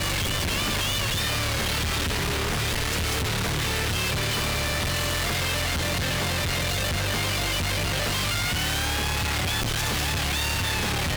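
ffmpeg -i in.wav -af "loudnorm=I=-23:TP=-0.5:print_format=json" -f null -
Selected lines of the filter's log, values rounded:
"input_i" : "-24.7",
"input_tp" : "-20.2",
"input_lra" : "0.3",
"input_thresh" : "-34.7",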